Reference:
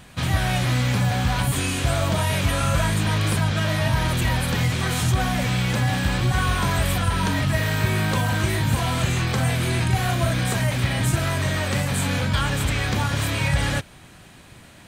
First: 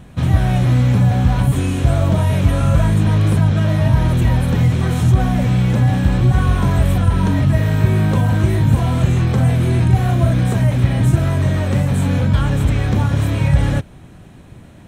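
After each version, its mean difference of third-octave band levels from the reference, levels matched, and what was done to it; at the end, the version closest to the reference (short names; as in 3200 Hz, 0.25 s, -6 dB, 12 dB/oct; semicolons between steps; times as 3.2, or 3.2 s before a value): 7.5 dB: tilt shelf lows +7.5 dB, about 810 Hz; notch 4700 Hz, Q 10; gain +1.5 dB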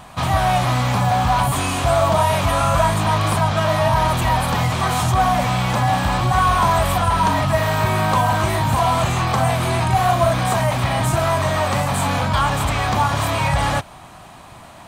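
3.5 dB: band shelf 880 Hz +11 dB 1.2 oct; in parallel at -9.5 dB: overloaded stage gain 24.5 dB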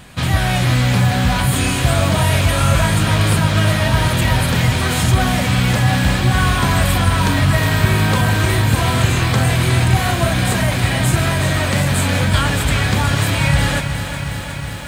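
2.0 dB: notch 5900 Hz, Q 21; lo-fi delay 0.364 s, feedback 80%, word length 8-bit, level -9.5 dB; gain +5.5 dB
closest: third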